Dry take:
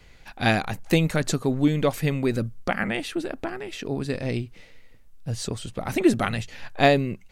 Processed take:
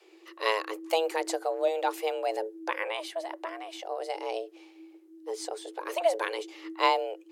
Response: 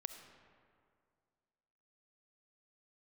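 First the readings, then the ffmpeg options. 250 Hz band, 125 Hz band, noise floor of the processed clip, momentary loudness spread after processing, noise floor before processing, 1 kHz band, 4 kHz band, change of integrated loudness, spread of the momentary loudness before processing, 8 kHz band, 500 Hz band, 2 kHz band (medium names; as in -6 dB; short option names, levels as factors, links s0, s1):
-17.5 dB, under -40 dB, -56 dBFS, 11 LU, -51 dBFS, -0.5 dB, -3.5 dB, -6.0 dB, 11 LU, -6.5 dB, -3.0 dB, -7.0 dB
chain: -af "afreqshift=320,volume=0.473"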